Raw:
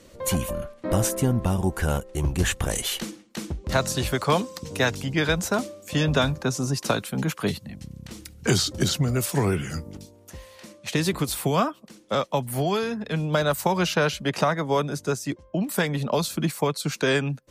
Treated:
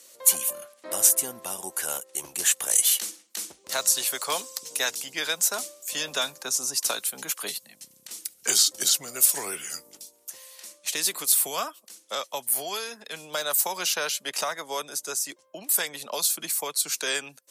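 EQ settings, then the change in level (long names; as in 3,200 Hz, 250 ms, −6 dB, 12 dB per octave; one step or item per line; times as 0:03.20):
high-pass filter 510 Hz 12 dB per octave
high-shelf EQ 6,200 Hz +8.5 dB
parametric band 11,000 Hz +13 dB 2.5 octaves
−7.5 dB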